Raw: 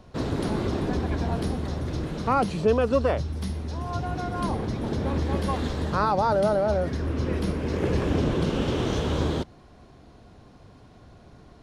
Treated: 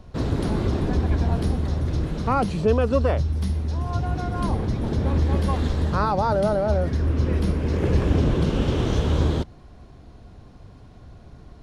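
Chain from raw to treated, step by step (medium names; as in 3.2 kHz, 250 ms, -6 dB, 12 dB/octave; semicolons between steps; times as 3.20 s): bass shelf 110 Hz +11 dB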